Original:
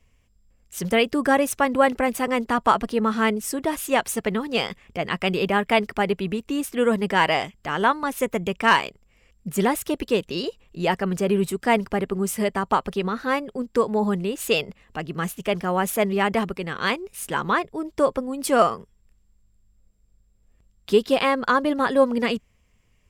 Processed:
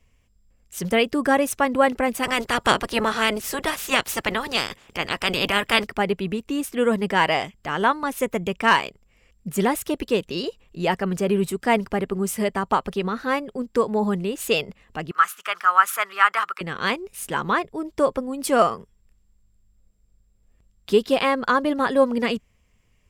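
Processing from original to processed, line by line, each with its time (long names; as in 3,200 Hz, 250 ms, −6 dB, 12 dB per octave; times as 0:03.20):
0:02.22–0:05.83: ceiling on every frequency bin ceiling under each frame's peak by 20 dB
0:15.11–0:16.61: high-pass with resonance 1,300 Hz, resonance Q 6.7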